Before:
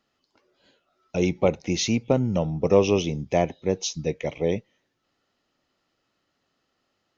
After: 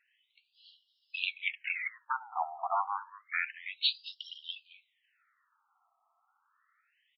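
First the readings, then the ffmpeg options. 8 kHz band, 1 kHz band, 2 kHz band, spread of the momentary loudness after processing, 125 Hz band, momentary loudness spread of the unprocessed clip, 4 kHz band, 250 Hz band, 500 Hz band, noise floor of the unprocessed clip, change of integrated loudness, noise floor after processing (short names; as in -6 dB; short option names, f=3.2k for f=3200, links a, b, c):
n/a, -1.5 dB, +2.0 dB, 12 LU, under -40 dB, 8 LU, -1.0 dB, under -40 dB, -26.5 dB, -75 dBFS, -10.5 dB, -77 dBFS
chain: -filter_complex "[0:a]acontrast=78,asplit=2[a][b];[b]adelay=220,highpass=300,lowpass=3.4k,asoftclip=type=hard:threshold=-11.5dB,volume=-17dB[c];[a][c]amix=inputs=2:normalize=0,afftfilt=real='re*between(b*sr/1024,940*pow(4000/940,0.5+0.5*sin(2*PI*0.29*pts/sr))/1.41,940*pow(4000/940,0.5+0.5*sin(2*PI*0.29*pts/sr))*1.41)':imag='im*between(b*sr/1024,940*pow(4000/940,0.5+0.5*sin(2*PI*0.29*pts/sr))/1.41,940*pow(4000/940,0.5+0.5*sin(2*PI*0.29*pts/sr))*1.41)':win_size=1024:overlap=0.75"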